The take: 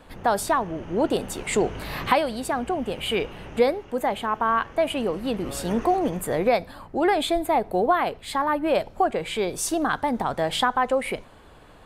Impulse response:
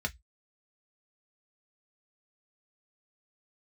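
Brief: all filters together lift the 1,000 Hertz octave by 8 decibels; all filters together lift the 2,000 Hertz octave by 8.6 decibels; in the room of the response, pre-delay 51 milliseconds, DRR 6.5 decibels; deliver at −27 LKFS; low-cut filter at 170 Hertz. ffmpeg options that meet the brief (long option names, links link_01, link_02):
-filter_complex "[0:a]highpass=170,equalizer=frequency=1000:width_type=o:gain=8.5,equalizer=frequency=2000:width_type=o:gain=8,asplit=2[link_01][link_02];[1:a]atrim=start_sample=2205,adelay=51[link_03];[link_02][link_03]afir=irnorm=-1:irlink=0,volume=-11dB[link_04];[link_01][link_04]amix=inputs=2:normalize=0,volume=-8.5dB"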